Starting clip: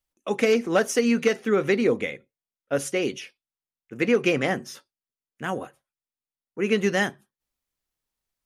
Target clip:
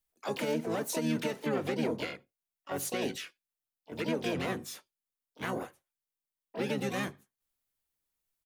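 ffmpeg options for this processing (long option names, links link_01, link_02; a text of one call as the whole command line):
ffmpeg -i in.wav -filter_complex "[0:a]highshelf=frequency=2300:gain=3.5,acrossover=split=430[link_01][link_02];[link_02]acompressor=threshold=-27dB:ratio=3[link_03];[link_01][link_03]amix=inputs=2:normalize=0,acrossover=split=6100[link_04][link_05];[link_04]alimiter=limit=-19dB:level=0:latency=1:release=124[link_06];[link_05]aderivative[link_07];[link_06][link_07]amix=inputs=2:normalize=0,asplit=4[link_08][link_09][link_10][link_11];[link_09]asetrate=29433,aresample=44100,atempo=1.49831,volume=-6dB[link_12];[link_10]asetrate=58866,aresample=44100,atempo=0.749154,volume=-4dB[link_13];[link_11]asetrate=88200,aresample=44100,atempo=0.5,volume=-10dB[link_14];[link_08][link_12][link_13][link_14]amix=inputs=4:normalize=0,volume=-6.5dB" out.wav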